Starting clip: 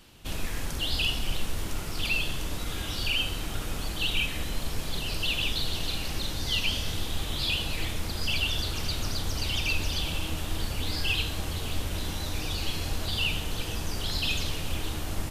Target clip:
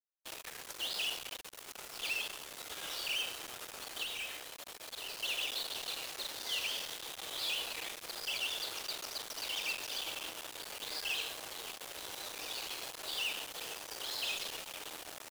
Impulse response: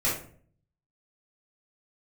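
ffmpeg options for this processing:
-filter_complex "[0:a]aecho=1:1:170:0.0841,asoftclip=type=tanh:threshold=-25.5dB,highpass=frequency=420:width=0.5412,highpass=frequency=420:width=1.3066,asettb=1/sr,asplit=3[link_01][link_02][link_03];[link_01]atrim=end=4.034[link_04];[link_02]atrim=start=4.03:end=5.19,asetpts=PTS-STARTPTS,afade=type=in:duration=0.004:curve=qsin,afade=type=out:start_time=1.156:duration=0.004:curve=qsin,volume=35dB,asoftclip=hard,volume=-35dB[link_05];[link_03]atrim=start=5.186[link_06];[link_04][link_05]acrossfade=duration=0.004:curve1=hsin:curve2=qsin[link_07];[link_07][link_06]acrossfade=duration=0.004:curve1=qsin:curve2=hsin,acrusher=bits=5:mix=0:aa=0.5,volume=-4dB"

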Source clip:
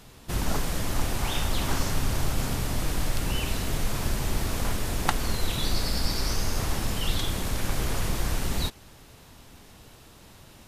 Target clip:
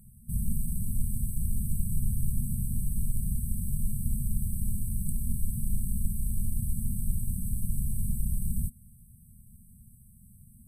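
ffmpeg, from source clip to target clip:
ffmpeg -i in.wav -af "afftfilt=real='re*(1-between(b*sr/4096,240,7900))':imag='im*(1-between(b*sr/4096,240,7900))':win_size=4096:overlap=0.75,volume=-1dB" out.wav

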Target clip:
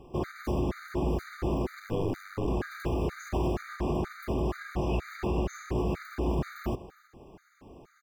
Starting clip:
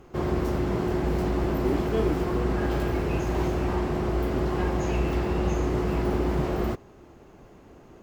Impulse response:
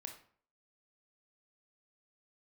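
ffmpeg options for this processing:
-filter_complex "[0:a]asplit=3[link_01][link_02][link_03];[link_01]afade=type=out:start_time=1.79:duration=0.02[link_04];[link_02]aeval=exprs='val(0)*sin(2*PI*48*n/s)':channel_layout=same,afade=type=in:start_time=1.79:duration=0.02,afade=type=out:start_time=2.46:duration=0.02[link_05];[link_03]afade=type=in:start_time=2.46:duration=0.02[link_06];[link_04][link_05][link_06]amix=inputs=3:normalize=0,alimiter=limit=-20dB:level=0:latency=1:release=31,asplit=2[link_07][link_08];[link_08]aecho=0:1:326:0.126[link_09];[link_07][link_09]amix=inputs=2:normalize=0,afftfilt=real='re*gt(sin(2*PI*2.1*pts/sr)*(1-2*mod(floor(b*sr/1024/1200),2)),0)':imag='im*gt(sin(2*PI*2.1*pts/sr)*(1-2*mod(floor(b*sr/1024/1200),2)),0)':win_size=1024:overlap=0.75"

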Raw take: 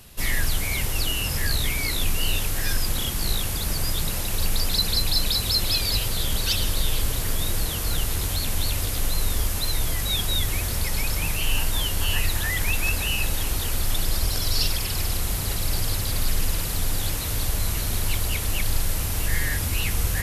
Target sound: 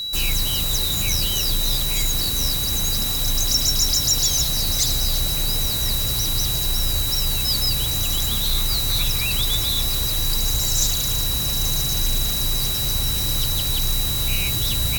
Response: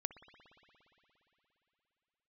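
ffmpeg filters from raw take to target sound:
-filter_complex "[0:a]acrossover=split=210|3300[link_01][link_02][link_03];[link_03]acontrast=83[link_04];[link_01][link_02][link_04]amix=inputs=3:normalize=0,aeval=exprs='val(0)+0.0562*sin(2*PI*2900*n/s)':channel_layout=same,asoftclip=type=tanh:threshold=-10dB,asetrate=59535,aresample=44100"

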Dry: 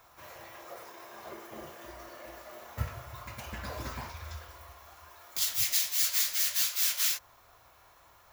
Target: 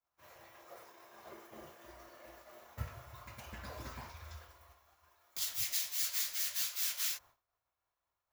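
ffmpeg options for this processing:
ffmpeg -i in.wav -af "agate=range=-33dB:threshold=-45dB:ratio=3:detection=peak,volume=-7.5dB" out.wav

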